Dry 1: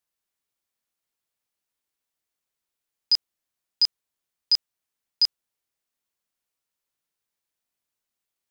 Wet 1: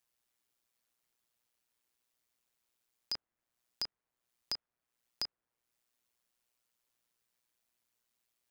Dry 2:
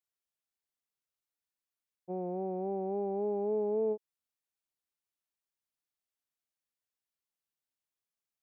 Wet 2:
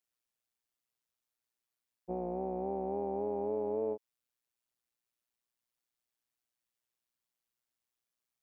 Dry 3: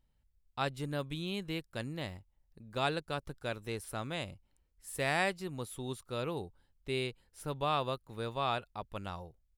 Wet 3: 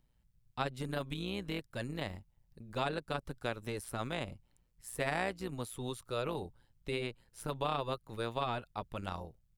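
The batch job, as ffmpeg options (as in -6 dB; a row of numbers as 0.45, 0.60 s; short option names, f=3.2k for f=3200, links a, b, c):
-filter_complex "[0:a]tremolo=f=120:d=0.667,acrossover=split=590|2100[a][b][c];[a]acompressor=threshold=-41dB:ratio=4[d];[b]acompressor=threshold=-39dB:ratio=4[e];[c]acompressor=threshold=-49dB:ratio=4[f];[d][e][f]amix=inputs=3:normalize=0,volume=5dB"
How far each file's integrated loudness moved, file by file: -17.5, -2.0, -1.5 LU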